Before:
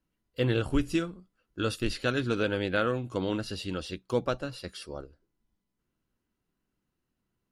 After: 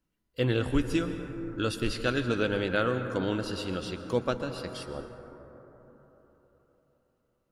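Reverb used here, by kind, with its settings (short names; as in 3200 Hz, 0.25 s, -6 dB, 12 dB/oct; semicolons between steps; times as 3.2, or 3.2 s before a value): plate-style reverb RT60 4.1 s, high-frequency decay 0.25×, pre-delay 0.105 s, DRR 8 dB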